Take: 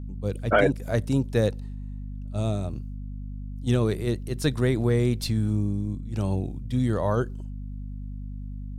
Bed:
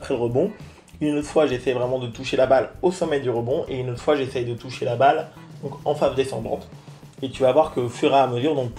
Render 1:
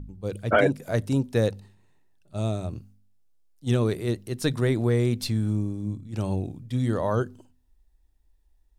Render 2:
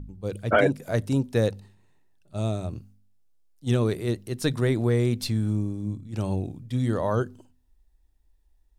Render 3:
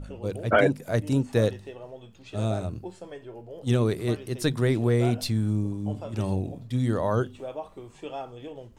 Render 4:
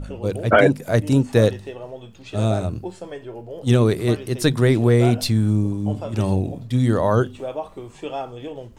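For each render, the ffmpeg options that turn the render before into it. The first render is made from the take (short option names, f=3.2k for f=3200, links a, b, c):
-af "bandreject=f=50:t=h:w=4,bandreject=f=100:t=h:w=4,bandreject=f=150:t=h:w=4,bandreject=f=200:t=h:w=4,bandreject=f=250:t=h:w=4"
-af anull
-filter_complex "[1:a]volume=-19dB[a];[0:a][a]amix=inputs=2:normalize=0"
-af "volume=7dB,alimiter=limit=-3dB:level=0:latency=1"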